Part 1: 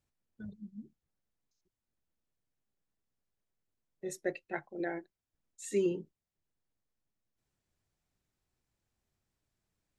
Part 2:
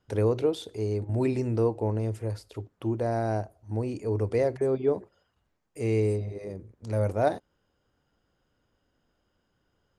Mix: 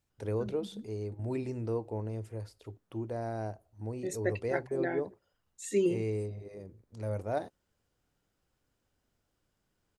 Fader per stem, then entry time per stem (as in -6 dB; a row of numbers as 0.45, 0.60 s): +2.5, -8.5 dB; 0.00, 0.10 s